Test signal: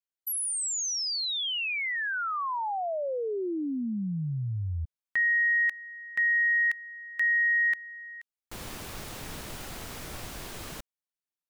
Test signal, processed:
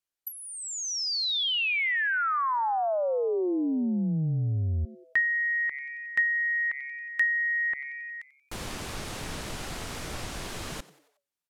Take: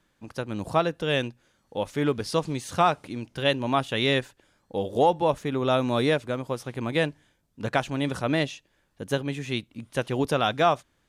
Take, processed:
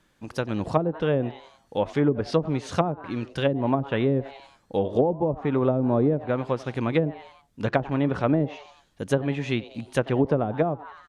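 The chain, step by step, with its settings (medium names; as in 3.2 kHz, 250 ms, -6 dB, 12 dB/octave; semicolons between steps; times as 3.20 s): frequency-shifting echo 91 ms, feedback 49%, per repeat +140 Hz, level -19.5 dB; low-pass that closes with the level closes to 380 Hz, closed at -18.5 dBFS; trim +4 dB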